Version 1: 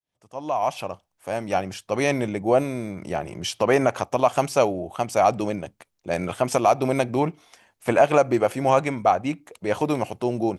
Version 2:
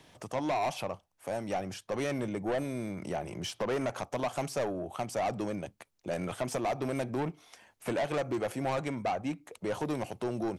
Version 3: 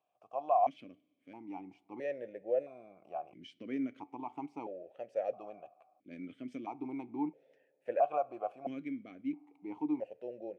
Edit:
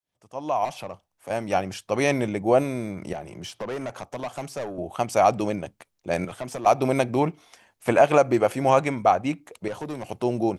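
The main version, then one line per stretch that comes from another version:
1
0.65–1.3 from 2
3.13–4.78 from 2
6.25–6.66 from 2
9.68–10.09 from 2
not used: 3

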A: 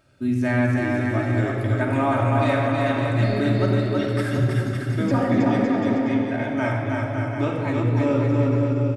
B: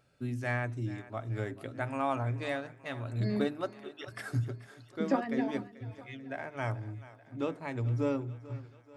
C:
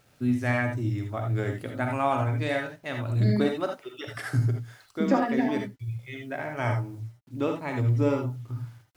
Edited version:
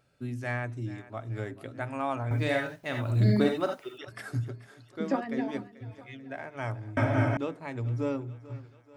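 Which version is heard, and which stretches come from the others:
B
2.31–3.98 from C
6.97–7.37 from A

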